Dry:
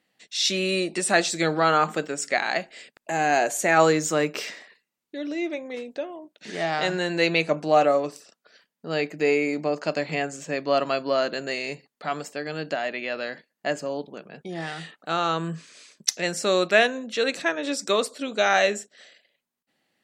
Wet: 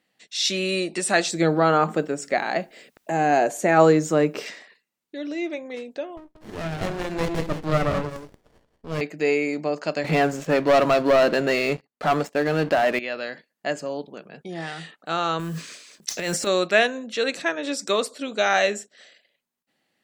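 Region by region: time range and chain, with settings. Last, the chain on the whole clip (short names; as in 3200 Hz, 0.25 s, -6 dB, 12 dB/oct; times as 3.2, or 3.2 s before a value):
1.31–4.46 tilt shelf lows +6 dB, about 1100 Hz + requantised 12-bit, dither triangular
6.17–9.01 phaser 2 Hz, delay 4.6 ms, feedback 21% + echo 0.181 s -10 dB + running maximum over 33 samples
10.04–12.99 LPF 1800 Hz 6 dB/oct + sample leveller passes 3
15.39–16.47 modulation noise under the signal 23 dB + transient shaper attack -7 dB, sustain +10 dB
whole clip: dry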